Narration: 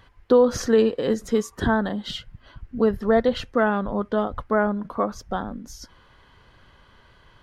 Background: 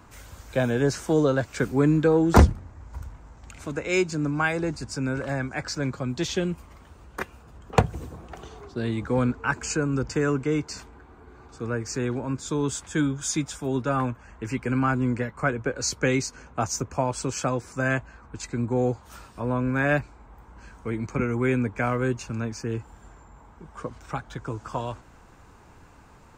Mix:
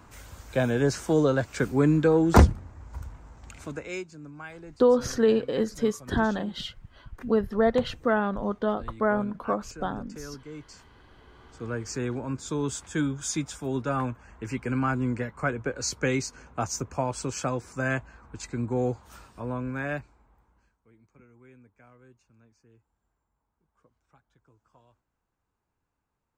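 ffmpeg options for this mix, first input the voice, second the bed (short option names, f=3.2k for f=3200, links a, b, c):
-filter_complex "[0:a]adelay=4500,volume=-3.5dB[a];[1:a]volume=13.5dB,afade=t=out:st=3.49:d=0.57:silence=0.149624,afade=t=in:st=10.51:d=1.37:silence=0.188365,afade=t=out:st=18.96:d=1.81:silence=0.0421697[b];[a][b]amix=inputs=2:normalize=0"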